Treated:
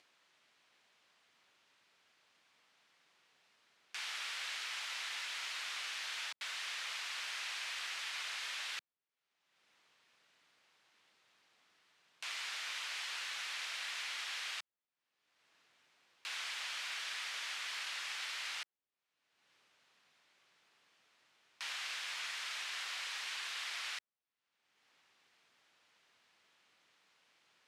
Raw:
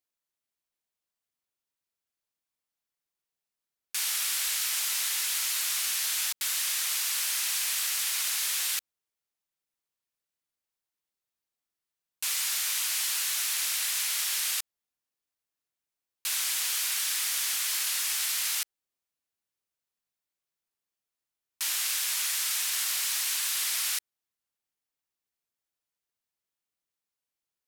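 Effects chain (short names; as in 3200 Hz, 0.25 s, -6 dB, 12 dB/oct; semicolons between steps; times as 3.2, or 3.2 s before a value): upward compressor, threshold -49 dBFS; BPF 130–3100 Hz; mismatched tape noise reduction encoder only; gain -4 dB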